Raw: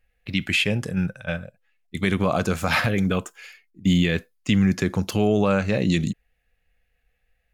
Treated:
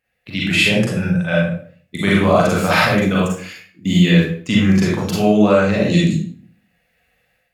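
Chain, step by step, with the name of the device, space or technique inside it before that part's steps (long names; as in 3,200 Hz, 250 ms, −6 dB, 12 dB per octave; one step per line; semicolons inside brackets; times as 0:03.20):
far laptop microphone (convolution reverb RT60 0.50 s, pre-delay 35 ms, DRR −5 dB; high-pass filter 130 Hz 12 dB per octave; automatic gain control gain up to 8.5 dB)
level −1 dB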